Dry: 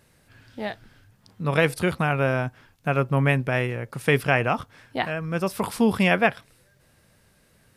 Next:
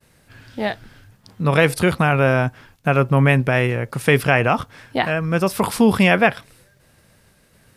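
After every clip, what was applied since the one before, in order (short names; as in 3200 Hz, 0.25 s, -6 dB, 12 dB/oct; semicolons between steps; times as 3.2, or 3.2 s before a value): expander -56 dBFS; in parallel at -0.5 dB: limiter -16.5 dBFS, peak gain reduction 11.5 dB; on the sum: gain +2 dB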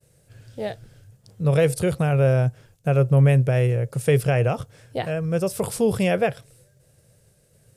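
graphic EQ 125/250/500/1000/2000/4000/8000 Hz +10/-8/+9/-9/-5/-3/+7 dB; gain -6.5 dB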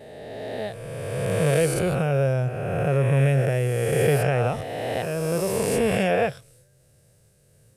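spectral swells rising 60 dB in 2.34 s; gain -4.5 dB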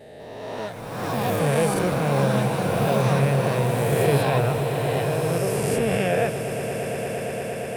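swelling echo 0.116 s, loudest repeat 8, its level -14 dB; echoes that change speed 0.197 s, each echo +7 st, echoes 3, each echo -6 dB; gain -1.5 dB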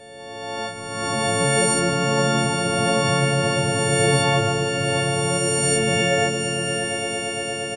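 frequency quantiser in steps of 4 st; diffused feedback echo 0.618 s, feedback 40%, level -8 dB; downsampling 22050 Hz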